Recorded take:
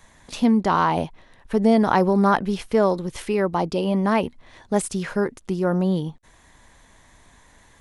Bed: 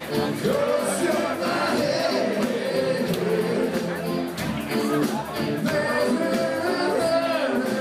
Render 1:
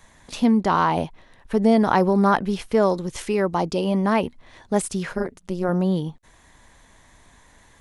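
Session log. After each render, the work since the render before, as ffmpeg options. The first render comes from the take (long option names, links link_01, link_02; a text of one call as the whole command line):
ffmpeg -i in.wav -filter_complex "[0:a]asettb=1/sr,asplit=3[link_01][link_02][link_03];[link_01]atrim=end=2.814[link_04];[link_02]atrim=start=2.81:end=4.02,asetpts=PTS-STARTPTS,afade=type=in:duration=0.004:curve=qsin,afade=type=out:start_time=1.206:duration=0.004:curve=qsin,equalizer=frequency=6800:width_type=o:width=0.77:gain=5.5[link_05];[link_03]atrim=start=4.016[link_06];[link_04][link_05]acrossfade=duration=0.004:curve1=hsin:curve2=qsin[link_07];[link_07][link_06]acrossfade=duration=0.004:curve1=qsin:curve2=hsin,asettb=1/sr,asplit=3[link_08][link_09][link_10];[link_08]atrim=end=5.124[link_11];[link_09]atrim=start=5.12:end=5.69,asetpts=PTS-STARTPTS,afade=type=in:duration=0.004:curve=qsin,afade=type=out:start_time=0.566:duration=0.004:curve=qsin,tremolo=f=180:d=0.824[link_12];[link_10]atrim=start=5.686[link_13];[link_11][link_12]acrossfade=duration=0.004:curve1=hsin:curve2=qsin[link_14];[link_14][link_13]acrossfade=duration=0.004:curve1=qsin:curve2=hsin" out.wav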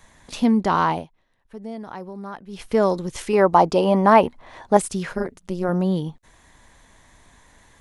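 ffmpeg -i in.wav -filter_complex "[0:a]asettb=1/sr,asplit=3[link_01][link_02][link_03];[link_01]atrim=end=3.334[link_04];[link_02]atrim=start=3.33:end=4.77,asetpts=PTS-STARTPTS,afade=type=in:duration=0.004:curve=qsin,afade=type=out:start_time=1.436:duration=0.004:curve=qsin,equalizer=frequency=840:width=0.7:gain=10.5[link_05];[link_03]atrim=start=4.766[link_06];[link_04][link_05]acrossfade=duration=0.004:curve1=hsin:curve2=qsin[link_07];[link_07][link_06]acrossfade=duration=0.004:curve1=qsin:curve2=hsin,asplit=3[link_08][link_09][link_10];[link_08]atrim=end=1.11,asetpts=PTS-STARTPTS,afade=type=out:start_time=0.91:duration=0.2:curve=qua:silence=0.141254[link_11];[link_09]atrim=start=1.11:end=2.45,asetpts=PTS-STARTPTS,volume=-17dB[link_12];[link_10]atrim=start=2.45,asetpts=PTS-STARTPTS,afade=type=in:duration=0.2:curve=qua:silence=0.141254[link_13];[link_11][link_12][link_13]concat=n=3:v=0:a=1" out.wav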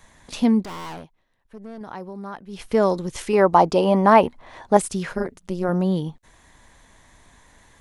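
ffmpeg -i in.wav -filter_complex "[0:a]asettb=1/sr,asplit=3[link_01][link_02][link_03];[link_01]atrim=end=0.634[link_04];[link_02]atrim=start=0.63:end=1.81,asetpts=PTS-STARTPTS,afade=type=in:duration=0.004:curve=qsin,afade=type=out:start_time=1.176:duration=0.004:curve=qsin,aeval=exprs='(tanh(44.7*val(0)+0.5)-tanh(0.5))/44.7':channel_layout=same[link_05];[link_03]atrim=start=1.806[link_06];[link_04][link_05]acrossfade=duration=0.004:curve1=hsin:curve2=qsin[link_07];[link_07][link_06]acrossfade=duration=0.004:curve1=qsin:curve2=hsin" out.wav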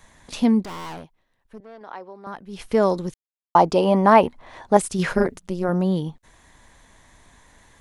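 ffmpeg -i in.wav -filter_complex "[0:a]asettb=1/sr,asplit=3[link_01][link_02][link_03];[link_01]atrim=end=1.604[link_04];[link_02]atrim=start=1.6:end=2.27,asetpts=PTS-STARTPTS,afade=type=in:duration=0.004:curve=qsin,afade=type=out:start_time=0.666:duration=0.004:curve=qsin,acrossover=split=360 5100:gain=0.126 1 0.126[link_05][link_06][link_07];[link_05][link_06][link_07]amix=inputs=3:normalize=0[link_08];[link_03]atrim=start=2.266[link_09];[link_04][link_08]acrossfade=duration=0.004:curve1=hsin:curve2=qsin[link_10];[link_10][link_09]acrossfade=duration=0.004:curve1=qsin:curve2=hsin,asplit=3[link_11][link_12][link_13];[link_11]afade=type=out:start_time=4.98:duration=0.02[link_14];[link_12]acontrast=66,afade=type=in:start_time=4.98:duration=0.02,afade=type=out:start_time=5.39:duration=0.02[link_15];[link_13]afade=type=in:start_time=5.39:duration=0.02[link_16];[link_14][link_15][link_16]amix=inputs=3:normalize=0,asplit=3[link_17][link_18][link_19];[link_17]atrim=end=3.14,asetpts=PTS-STARTPTS,afade=type=out:start_time=3.136:duration=0.004:curve=hsin[link_20];[link_18]atrim=start=3.14:end=3.55,asetpts=PTS-STARTPTS,volume=0[link_21];[link_19]atrim=start=3.55,asetpts=PTS-STARTPTS,afade=type=in:duration=0.004:curve=hsin[link_22];[link_20][link_21][link_22]concat=n=3:v=0:a=1" out.wav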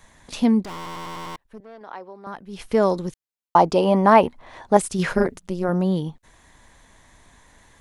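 ffmpeg -i in.wav -filter_complex "[0:a]asplit=7[link_01][link_02][link_03][link_04][link_05][link_06][link_07];[link_01]atrim=end=0.862[link_08];[link_02]atrim=start=0.758:end=0.862[link_09];[link_03]atrim=start=0.758:end=0.862[link_10];[link_04]atrim=start=0.758:end=0.862[link_11];[link_05]atrim=start=0.758:end=0.862[link_12];[link_06]atrim=start=0.758:end=0.862[link_13];[link_07]atrim=start=1.358[link_14];[link_08][link_09]acrossfade=duration=0.004:curve1=hsin:curve2=hsin[link_15];[link_15][link_10]acrossfade=duration=0.004:curve1=hsin:curve2=hsin[link_16];[link_16][link_11]acrossfade=duration=0.004:curve1=hsin:curve2=hsin[link_17];[link_17][link_12]acrossfade=duration=0.004:curve1=hsin:curve2=hsin[link_18];[link_18][link_13]acrossfade=duration=0.004:curve1=hsin:curve2=hsin[link_19];[link_19][link_14]acrossfade=duration=0.004:curve1=hsin:curve2=hsin" out.wav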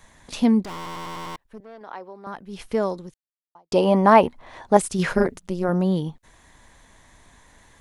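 ffmpeg -i in.wav -filter_complex "[0:a]asplit=2[link_01][link_02];[link_01]atrim=end=3.72,asetpts=PTS-STARTPTS,afade=type=out:start_time=2.52:duration=1.2:curve=qua[link_03];[link_02]atrim=start=3.72,asetpts=PTS-STARTPTS,afade=type=in:duration=0.004:curve=hsin[link_04];[link_03][link_04]concat=n=2:v=0:a=1" out.wav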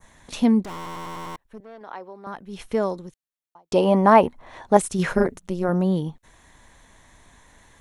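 ffmpeg -i in.wav -af "bandreject=frequency=4800:width=12,adynamicequalizer=threshold=0.00708:dfrequency=3400:dqfactor=0.84:tfrequency=3400:tqfactor=0.84:attack=5:release=100:ratio=0.375:range=2.5:mode=cutabove:tftype=bell" out.wav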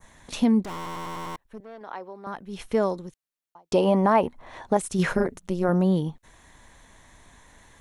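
ffmpeg -i in.wav -af "alimiter=limit=-11dB:level=0:latency=1:release=229" out.wav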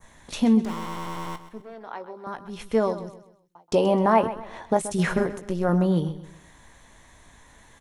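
ffmpeg -i in.wav -filter_complex "[0:a]asplit=2[link_01][link_02];[link_02]adelay=18,volume=-10.5dB[link_03];[link_01][link_03]amix=inputs=2:normalize=0,aecho=1:1:129|258|387|516:0.211|0.0782|0.0289|0.0107" out.wav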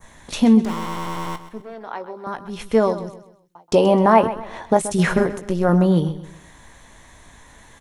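ffmpeg -i in.wav -af "volume=5.5dB" out.wav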